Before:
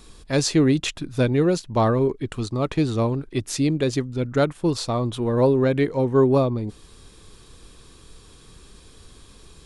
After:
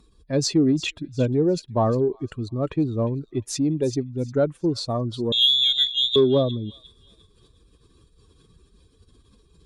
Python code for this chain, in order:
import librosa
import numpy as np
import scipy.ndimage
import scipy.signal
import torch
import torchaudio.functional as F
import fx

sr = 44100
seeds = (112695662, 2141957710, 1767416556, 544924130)

p1 = fx.spec_expand(x, sr, power=1.7)
p2 = fx.highpass(p1, sr, hz=93.0, slope=6)
p3 = fx.freq_invert(p2, sr, carrier_hz=3800, at=(5.32, 6.16))
p4 = p3 + fx.echo_wet_highpass(p3, sr, ms=354, feedback_pct=30, hz=2300.0, wet_db=-14, dry=0)
y = fx.cheby_harmonics(p4, sr, harmonics=(3, 6), levels_db=(-32, -39), full_scale_db=-8.0)